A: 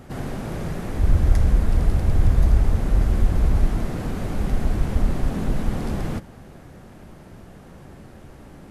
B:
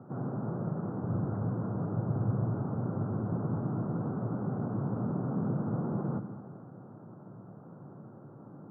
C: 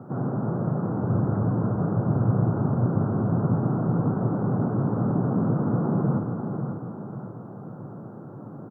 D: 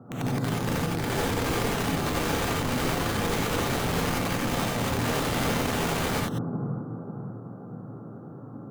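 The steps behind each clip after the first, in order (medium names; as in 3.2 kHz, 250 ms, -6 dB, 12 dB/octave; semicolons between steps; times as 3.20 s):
Chebyshev band-pass 110–1400 Hz, order 5; bass shelf 240 Hz +5 dB; reverberation RT60 2.4 s, pre-delay 46 ms, DRR 9 dB; trim -6.5 dB
feedback delay 544 ms, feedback 46%, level -7 dB; trim +8 dB
band-stop 880 Hz, Q 27; integer overflow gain 19.5 dB; gated-style reverb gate 110 ms rising, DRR -3.5 dB; trim -7 dB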